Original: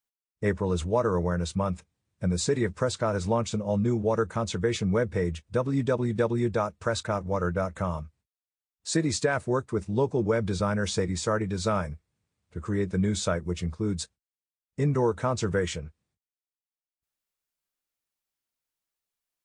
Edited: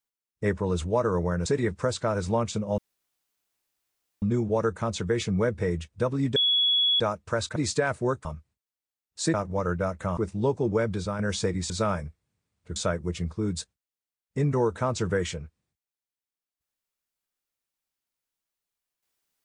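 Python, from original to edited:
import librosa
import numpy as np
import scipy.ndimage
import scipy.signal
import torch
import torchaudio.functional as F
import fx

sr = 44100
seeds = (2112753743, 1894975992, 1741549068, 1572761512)

y = fx.edit(x, sr, fx.cut(start_s=1.46, length_s=0.98),
    fx.insert_room_tone(at_s=3.76, length_s=1.44),
    fx.bleep(start_s=5.9, length_s=0.64, hz=3370.0, db=-19.5),
    fx.swap(start_s=7.1, length_s=0.83, other_s=9.02, other_length_s=0.69),
    fx.fade_out_to(start_s=10.37, length_s=0.36, floor_db=-6.0),
    fx.cut(start_s=11.24, length_s=0.32),
    fx.cut(start_s=12.62, length_s=0.56), tone=tone)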